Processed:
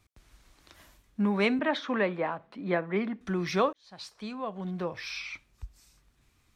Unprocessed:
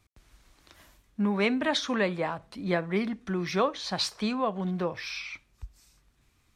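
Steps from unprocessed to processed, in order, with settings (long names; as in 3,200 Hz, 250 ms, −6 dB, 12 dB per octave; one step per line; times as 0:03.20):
0:01.59–0:03.21: three-way crossover with the lows and the highs turned down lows −17 dB, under 160 Hz, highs −19 dB, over 3,100 Hz
0:03.73–0:05.33: fade in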